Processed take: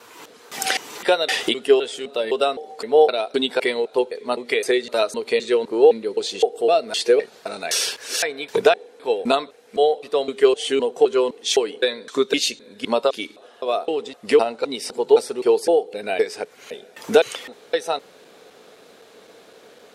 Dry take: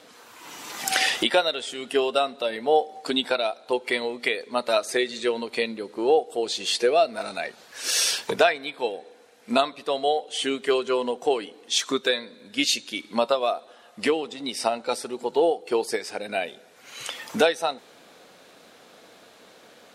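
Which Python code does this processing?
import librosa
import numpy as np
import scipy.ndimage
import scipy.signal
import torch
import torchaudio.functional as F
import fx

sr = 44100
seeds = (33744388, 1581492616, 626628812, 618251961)

y = fx.block_reorder(x, sr, ms=257.0, group=2)
y = fx.peak_eq(y, sr, hz=430.0, db=9.0, octaves=0.4)
y = y * 10.0 ** (1.0 / 20.0)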